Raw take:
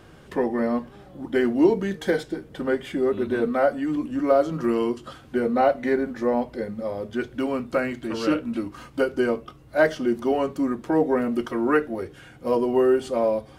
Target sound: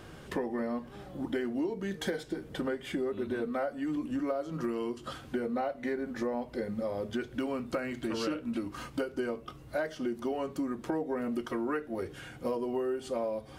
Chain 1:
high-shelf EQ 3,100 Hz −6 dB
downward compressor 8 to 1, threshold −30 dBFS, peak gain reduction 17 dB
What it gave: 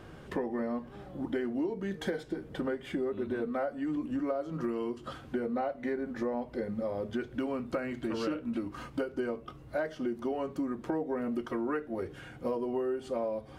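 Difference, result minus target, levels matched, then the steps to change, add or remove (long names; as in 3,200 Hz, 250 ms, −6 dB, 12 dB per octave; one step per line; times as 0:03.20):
8,000 Hz band −7.0 dB
change: high-shelf EQ 3,100 Hz +2.5 dB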